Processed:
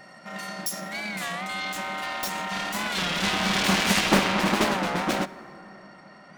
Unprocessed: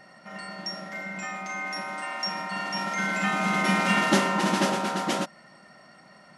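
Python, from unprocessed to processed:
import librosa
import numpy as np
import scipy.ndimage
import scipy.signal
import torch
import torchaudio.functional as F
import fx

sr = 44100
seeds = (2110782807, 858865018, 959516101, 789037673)

y = fx.self_delay(x, sr, depth_ms=0.85)
y = fx.high_shelf(y, sr, hz=6700.0, db=fx.steps((0.0, 2.5), (1.43, -7.0), (4.0, -12.0)))
y = fx.rev_plate(y, sr, seeds[0], rt60_s=3.7, hf_ratio=0.35, predelay_ms=0, drr_db=17.0)
y = fx.record_warp(y, sr, rpm=33.33, depth_cents=160.0)
y = y * librosa.db_to_amplitude(3.5)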